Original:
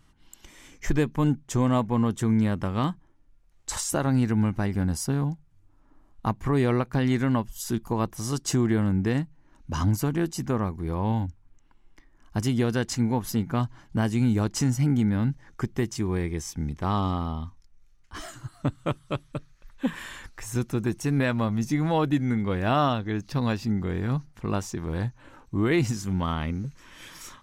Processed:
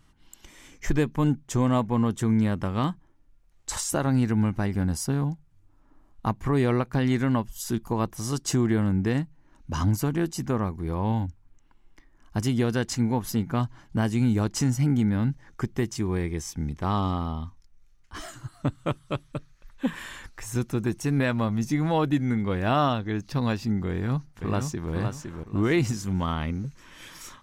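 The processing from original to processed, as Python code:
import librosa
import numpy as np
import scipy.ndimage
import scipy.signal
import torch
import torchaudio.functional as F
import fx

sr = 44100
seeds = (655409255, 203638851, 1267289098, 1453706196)

y = fx.echo_throw(x, sr, start_s=23.9, length_s=1.02, ms=510, feedback_pct=30, wet_db=-5.5)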